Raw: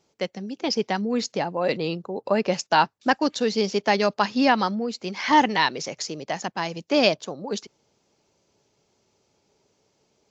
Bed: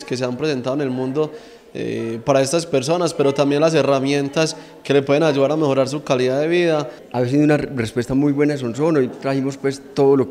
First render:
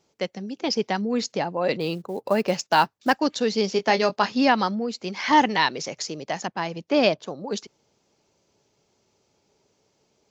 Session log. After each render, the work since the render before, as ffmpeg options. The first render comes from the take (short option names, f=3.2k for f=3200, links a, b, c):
-filter_complex "[0:a]asettb=1/sr,asplit=3[a][b][c];[a]atrim=end=1.804[d];[b]atrim=start=1.8:end=3.2,asetpts=PTS-STARTPTS,afade=t=in:d=0.004:c=qsin,afade=t=out:st=1.396:d=0.004:c=qsin,acrusher=bits=7:mode=log:mix=0:aa=0.000001[e];[c]atrim=start=3.196[f];[d][e]acrossfade=d=0.004:c1=hsin:c2=qsin[g];[g][f]acrossfade=d=0.004:c1=qsin:c2=hsin,asettb=1/sr,asplit=3[h][i][j];[h]atrim=end=3.744[k];[i]atrim=start=3.74:end=4.32,asetpts=PTS-STARTPTS,afade=t=in:d=0.004:c=qsin,afade=t=out:st=0.576:d=0.004:c=qsin,asplit=2[l][m];[m]adelay=22,volume=-9.5dB[n];[l][n]amix=inputs=2:normalize=0,atrim=end_sample=25578[o];[j]atrim=start=4.316[p];[k][o]acrossfade=d=0.004:c1=hsin:c2=qsin[q];[q][p]acrossfade=d=0.004:c1=qsin:c2=hsin,asettb=1/sr,asplit=3[r][s][t];[r]atrim=end=6.474[u];[s]atrim=start=6.47:end=7.27,asetpts=PTS-STARTPTS,afade=t=in:d=0.004:c=qsin,afade=t=out:st=0.796:d=0.004:c=qsin,aemphasis=mode=reproduction:type=50fm[v];[t]atrim=start=7.266[w];[u][v]acrossfade=d=0.004:c1=hsin:c2=qsin[x];[x][w]acrossfade=d=0.004:c1=qsin:c2=hsin"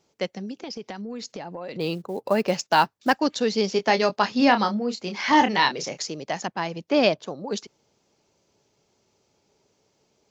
-filter_complex "[0:a]asettb=1/sr,asplit=3[a][b][c];[a]atrim=end=0.514[d];[b]atrim=start=0.51:end=1.76,asetpts=PTS-STARTPTS,afade=t=in:d=0.004:c=qsin,afade=t=out:st=1.246:d=0.004:c=qsin,acompressor=threshold=-31dB:ratio=8:attack=3.2:release=140:knee=1:detection=peak[e];[c]atrim=start=1.756[f];[d][e]acrossfade=d=0.004:c1=hsin:c2=qsin[g];[g][f]acrossfade=d=0.004:c1=qsin:c2=hsin,asettb=1/sr,asplit=3[h][i][j];[h]atrim=end=4.374[k];[i]atrim=start=4.37:end=6.02,asetpts=PTS-STARTPTS,afade=t=in:d=0.004:c=qsin,afade=t=out:st=1.646:d=0.004:c=qsin,asplit=2[l][m];[m]adelay=29,volume=-7.5dB[n];[l][n]amix=inputs=2:normalize=0,atrim=end_sample=72765[o];[j]atrim=start=6.016[p];[k][o]acrossfade=d=0.004:c1=hsin:c2=qsin[q];[q][p]acrossfade=d=0.004:c1=qsin:c2=hsin"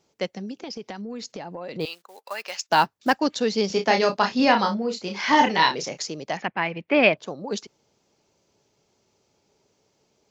-filter_complex "[0:a]asettb=1/sr,asplit=3[a][b][c];[a]atrim=end=1.854[d];[b]atrim=start=1.85:end=2.69,asetpts=PTS-STARTPTS,afade=t=in:d=0.004:c=qsin,afade=t=out:st=0.836:d=0.004:c=qsin,highpass=1.3k[e];[c]atrim=start=2.686[f];[d][e]acrossfade=d=0.004:c1=hsin:c2=qsin[g];[g][f]acrossfade=d=0.004:c1=qsin:c2=hsin,asettb=1/sr,asplit=3[h][i][j];[h]atrim=end=3.674[k];[i]atrim=start=3.67:end=5.8,asetpts=PTS-STARTPTS,afade=t=in:d=0.004:c=qsin,afade=t=out:st=2.126:d=0.004:c=qsin,asplit=2[l][m];[m]adelay=31,volume=-6dB[n];[l][n]amix=inputs=2:normalize=0,atrim=end_sample=93933[o];[j]atrim=start=5.796[p];[k][o]acrossfade=d=0.004:c1=hsin:c2=qsin[q];[q][p]acrossfade=d=0.004:c1=qsin:c2=hsin,asettb=1/sr,asplit=3[r][s][t];[r]atrim=end=6.374[u];[s]atrim=start=6.37:end=7.17,asetpts=PTS-STARTPTS,afade=t=in:d=0.004:c=qsin,afade=t=out:st=0.796:d=0.004:c=qsin,lowpass=f=2.3k:t=q:w=3.3[v];[t]atrim=start=7.166[w];[u][v]acrossfade=d=0.004:c1=hsin:c2=qsin[x];[x][w]acrossfade=d=0.004:c1=qsin:c2=hsin"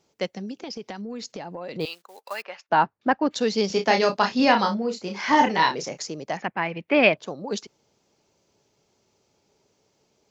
-filter_complex "[0:a]asettb=1/sr,asplit=3[a][b][c];[a]atrim=end=2.424[d];[b]atrim=start=2.42:end=3.31,asetpts=PTS-STARTPTS,afade=t=in:d=0.004:c=qsin,afade=t=out:st=0.886:d=0.004:c=qsin,lowpass=1.8k[e];[c]atrim=start=3.306[f];[d][e]acrossfade=d=0.004:c1=hsin:c2=qsin[g];[g][f]acrossfade=d=0.004:c1=qsin:c2=hsin,asettb=1/sr,asplit=3[h][i][j];[h]atrim=end=4.904[k];[i]atrim=start=4.9:end=6.69,asetpts=PTS-STARTPTS,afade=t=in:d=0.004:c=qsin,afade=t=out:st=1.786:d=0.004:c=qsin,equalizer=f=3.5k:w=0.98:g=-5[l];[j]atrim=start=6.686[m];[k][l]acrossfade=d=0.004:c1=hsin:c2=qsin[n];[n][m]acrossfade=d=0.004:c1=qsin:c2=hsin"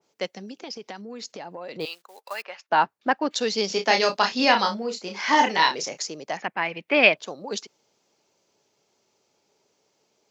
-af "highpass=f=360:p=1,adynamicequalizer=threshold=0.0251:dfrequency=2100:dqfactor=0.7:tfrequency=2100:tqfactor=0.7:attack=5:release=100:ratio=0.375:range=2.5:mode=boostabove:tftype=highshelf"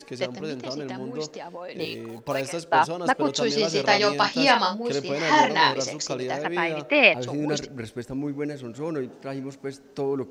-filter_complex "[1:a]volume=-13dB[a];[0:a][a]amix=inputs=2:normalize=0"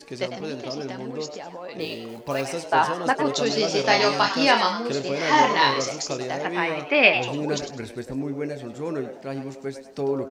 -filter_complex "[0:a]asplit=2[a][b];[b]adelay=22,volume=-12dB[c];[a][c]amix=inputs=2:normalize=0,asplit=4[d][e][f][g];[e]adelay=101,afreqshift=130,volume=-10dB[h];[f]adelay=202,afreqshift=260,volume=-20.2dB[i];[g]adelay=303,afreqshift=390,volume=-30.3dB[j];[d][h][i][j]amix=inputs=4:normalize=0"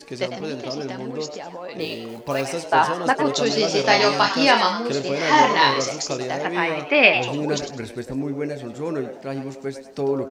-af "volume=2.5dB,alimiter=limit=-1dB:level=0:latency=1"